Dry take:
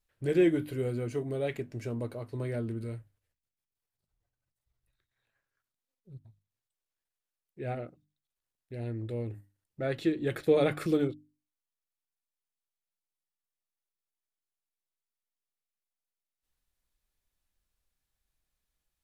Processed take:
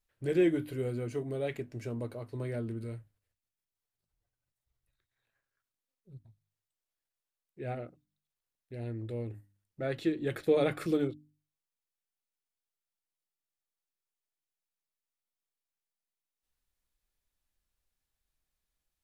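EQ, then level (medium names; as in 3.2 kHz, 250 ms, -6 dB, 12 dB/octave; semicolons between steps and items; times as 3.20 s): hum notches 50/100/150/200 Hz; -2.0 dB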